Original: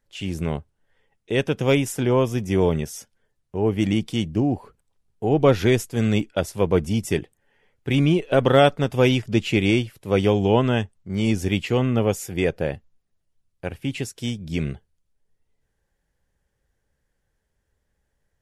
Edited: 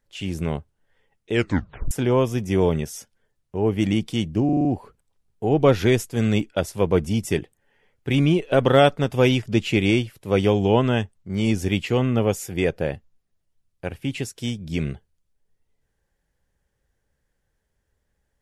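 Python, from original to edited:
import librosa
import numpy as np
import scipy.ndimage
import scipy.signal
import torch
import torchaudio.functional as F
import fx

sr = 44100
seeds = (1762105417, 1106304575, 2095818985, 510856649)

y = fx.edit(x, sr, fx.tape_stop(start_s=1.32, length_s=0.59),
    fx.stutter(start_s=4.45, slice_s=0.04, count=6), tone=tone)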